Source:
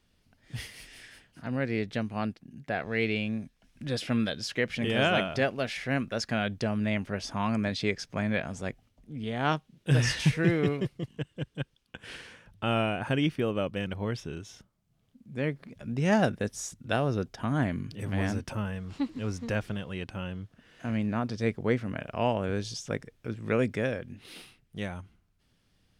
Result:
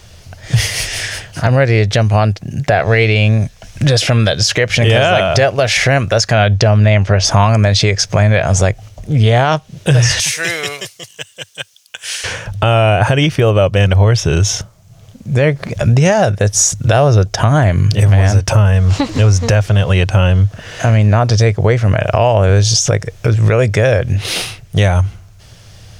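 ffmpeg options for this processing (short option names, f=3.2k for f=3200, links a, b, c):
-filter_complex "[0:a]asettb=1/sr,asplit=3[a][b][c];[a]atrim=end=6.334[d];[b]atrim=start=6.33:end=7.25,asetpts=PTS-STARTPTS,afade=t=in:d=0.004:c=qsin,afade=t=out:st=0.916:d=0.004:c=qsin,lowpass=5.9k[e];[c]atrim=start=7.246[f];[d][e]acrossfade=d=0.004:c1=hsin:c2=qsin[g];[g][f]acrossfade=d=0.004:c1=qsin:c2=hsin,asettb=1/sr,asplit=3[h][i][j];[h]atrim=end=10.204[k];[i]atrim=start=10.2:end=12.24,asetpts=PTS-STARTPTS,afade=t=in:d=0.004:c=qsin,afade=t=out:st=2.036:d=0.004:c=qsin,aderivative[l];[j]atrim=start=12.236[m];[k][l]acrossfade=d=0.004:c1=hsin:c2=qsin[n];[n][m]acrossfade=d=0.004:c1=qsin:c2=hsin,equalizer=f=100:t=o:w=0.67:g=11,equalizer=f=250:t=o:w=0.67:g=-12,equalizer=f=630:t=o:w=0.67:g=6,equalizer=f=6.3k:t=o:w=0.67:g=8,acompressor=threshold=-34dB:ratio=6,alimiter=level_in=28dB:limit=-1dB:release=50:level=0:latency=1,volume=-1dB"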